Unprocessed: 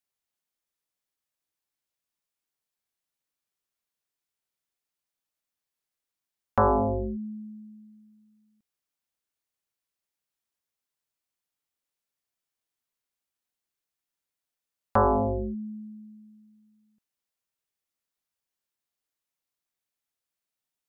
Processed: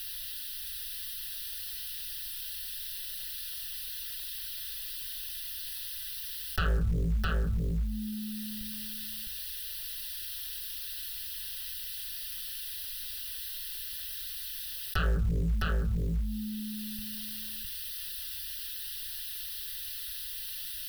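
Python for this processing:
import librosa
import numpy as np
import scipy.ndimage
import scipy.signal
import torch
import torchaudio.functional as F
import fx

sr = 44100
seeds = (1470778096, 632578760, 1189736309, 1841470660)

p1 = scipy.signal.sosfilt(scipy.signal.cheby2(4, 60, [280.0, 820.0], 'bandstop', fs=sr, output='sos'), x)
p2 = fx.low_shelf(p1, sr, hz=84.0, db=4.0)
p3 = fx.hum_notches(p2, sr, base_hz=50, count=9)
p4 = p3 + 0.78 * np.pad(p3, (int(4.6 * sr / 1000.0), 0))[:len(p3)]
p5 = fx.fold_sine(p4, sr, drive_db=17, ceiling_db=-22.0)
p6 = p4 + F.gain(torch.from_numpy(p5), -7.0).numpy()
p7 = fx.fixed_phaser(p6, sr, hz=1500.0, stages=8)
p8 = fx.quant_float(p7, sr, bits=4)
p9 = p8 + fx.echo_single(p8, sr, ms=660, db=-5.5, dry=0)
y = fx.env_flatten(p9, sr, amount_pct=70)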